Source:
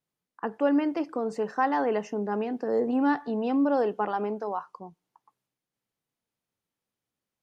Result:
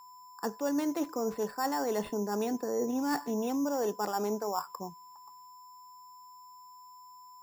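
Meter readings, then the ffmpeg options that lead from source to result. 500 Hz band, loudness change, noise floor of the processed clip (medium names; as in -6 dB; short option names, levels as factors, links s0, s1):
-4.5 dB, -5.0 dB, -53 dBFS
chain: -af "areverse,acompressor=threshold=0.0282:ratio=6,areverse,aeval=exprs='val(0)+0.00251*sin(2*PI*5300*n/s)':c=same,acrusher=samples=7:mix=1:aa=0.000001,volume=1.33"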